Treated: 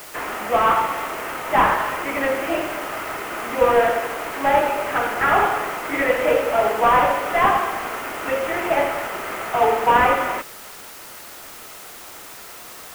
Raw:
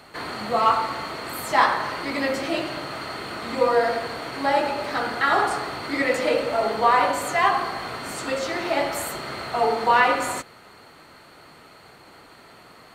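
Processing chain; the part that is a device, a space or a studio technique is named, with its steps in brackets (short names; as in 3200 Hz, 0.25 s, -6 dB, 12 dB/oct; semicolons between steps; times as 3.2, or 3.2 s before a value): army field radio (BPF 350–3300 Hz; CVSD 16 kbps; white noise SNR 19 dB); gain +5.5 dB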